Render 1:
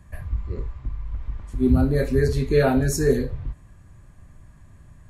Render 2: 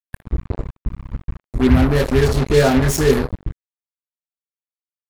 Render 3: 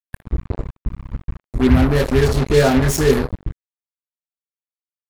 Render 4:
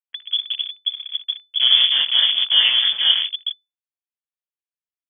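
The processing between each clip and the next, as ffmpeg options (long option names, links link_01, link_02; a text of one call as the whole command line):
ffmpeg -i in.wav -af "acrusher=bits=3:mix=0:aa=0.5,volume=4.5dB" out.wav
ffmpeg -i in.wav -af anull out.wav
ffmpeg -i in.wav -af "aeval=exprs='val(0)*sin(2*PI*120*n/s)':channel_layout=same,lowpass=frequency=3000:width_type=q:width=0.5098,lowpass=frequency=3000:width_type=q:width=0.6013,lowpass=frequency=3000:width_type=q:width=0.9,lowpass=frequency=3000:width_type=q:width=2.563,afreqshift=-3500,highshelf=frequency=2700:gain=9,volume=-4.5dB" out.wav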